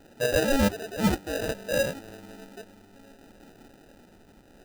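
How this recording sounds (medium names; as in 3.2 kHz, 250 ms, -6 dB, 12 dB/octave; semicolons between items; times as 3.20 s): phasing stages 8, 0.64 Hz, lowest notch 680–3500 Hz; aliases and images of a low sample rate 1.1 kHz, jitter 0%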